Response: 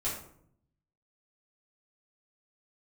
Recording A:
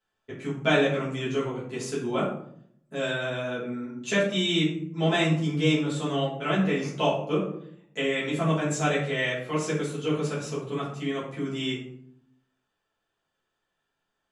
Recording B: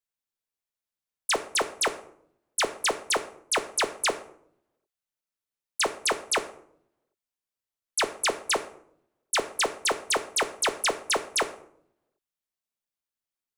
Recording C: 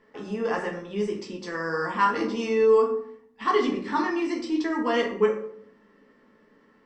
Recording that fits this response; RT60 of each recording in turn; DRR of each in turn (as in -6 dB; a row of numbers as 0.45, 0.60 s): A; 0.65, 0.65, 0.65 s; -9.0, 8.0, -1.5 dB